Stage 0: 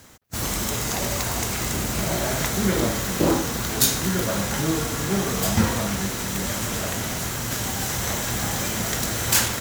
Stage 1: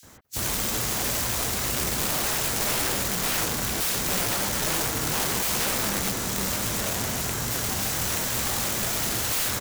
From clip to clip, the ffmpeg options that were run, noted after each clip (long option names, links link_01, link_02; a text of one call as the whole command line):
ffmpeg -i in.wav -filter_complex "[0:a]acrossover=split=2700[link_01][link_02];[link_01]adelay=30[link_03];[link_03][link_02]amix=inputs=2:normalize=0,aeval=exprs='(mod(10.6*val(0)+1,2)-1)/10.6':channel_layout=same" out.wav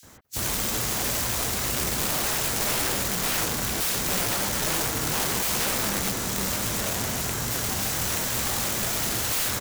ffmpeg -i in.wav -af anull out.wav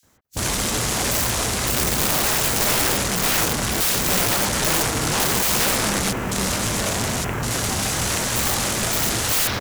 ffmpeg -i in.wav -af "afwtdn=0.0178,volume=6.5dB" out.wav